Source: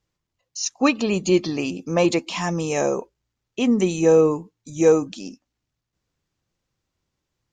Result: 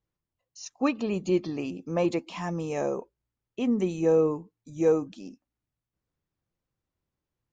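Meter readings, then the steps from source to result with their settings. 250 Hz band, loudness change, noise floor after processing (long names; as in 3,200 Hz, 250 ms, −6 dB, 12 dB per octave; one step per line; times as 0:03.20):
−6.5 dB, −7.0 dB, below −85 dBFS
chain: high-shelf EQ 2,700 Hz −11 dB
level −6.5 dB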